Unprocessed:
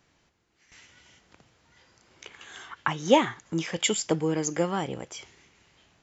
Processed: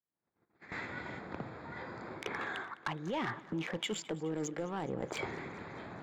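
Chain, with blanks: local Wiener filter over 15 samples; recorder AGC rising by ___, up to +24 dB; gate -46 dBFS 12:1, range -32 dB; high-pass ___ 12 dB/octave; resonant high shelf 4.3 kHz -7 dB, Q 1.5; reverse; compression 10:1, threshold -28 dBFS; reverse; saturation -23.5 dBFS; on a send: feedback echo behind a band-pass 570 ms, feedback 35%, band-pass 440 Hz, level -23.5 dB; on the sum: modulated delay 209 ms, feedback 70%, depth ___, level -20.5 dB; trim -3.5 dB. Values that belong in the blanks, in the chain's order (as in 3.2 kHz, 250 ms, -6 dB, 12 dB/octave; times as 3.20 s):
67 dB/s, 130 Hz, 86 cents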